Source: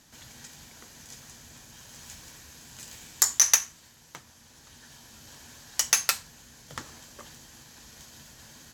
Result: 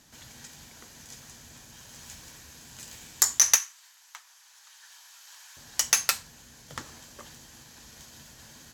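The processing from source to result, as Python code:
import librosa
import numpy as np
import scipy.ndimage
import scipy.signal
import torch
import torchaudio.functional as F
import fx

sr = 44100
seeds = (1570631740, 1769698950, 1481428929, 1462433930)

y = fx.highpass(x, sr, hz=890.0, slope=24, at=(3.56, 5.57))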